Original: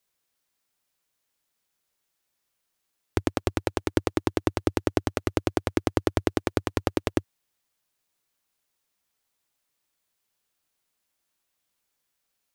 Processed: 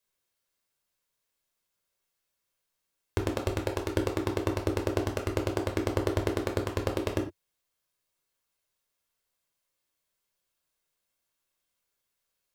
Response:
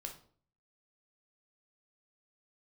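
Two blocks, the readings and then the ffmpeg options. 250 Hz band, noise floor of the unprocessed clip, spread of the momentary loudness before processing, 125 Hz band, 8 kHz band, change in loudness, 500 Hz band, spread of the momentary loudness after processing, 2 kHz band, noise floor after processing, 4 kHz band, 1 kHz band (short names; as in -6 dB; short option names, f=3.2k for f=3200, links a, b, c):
-4.5 dB, -79 dBFS, 3 LU, -0.5 dB, -3.5 dB, -3.0 dB, -1.5 dB, 3 LU, -3.0 dB, -82 dBFS, -3.5 dB, -3.5 dB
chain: -filter_complex "[1:a]atrim=start_sample=2205,afade=t=out:st=0.17:d=0.01,atrim=end_sample=7938[a];[0:a][a]afir=irnorm=-1:irlink=0"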